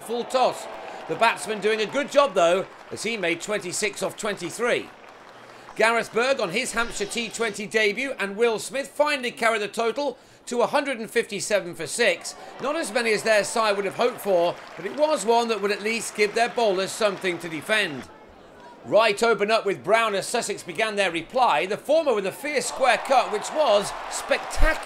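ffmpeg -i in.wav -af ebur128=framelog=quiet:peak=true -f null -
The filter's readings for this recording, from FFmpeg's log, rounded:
Integrated loudness:
  I:         -23.5 LUFS
  Threshold: -33.9 LUFS
Loudness range:
  LRA:         2.8 LU
  Threshold: -43.9 LUFS
  LRA low:   -25.4 LUFS
  LRA high:  -22.6 LUFS
True peak:
  Peak:       -4.6 dBFS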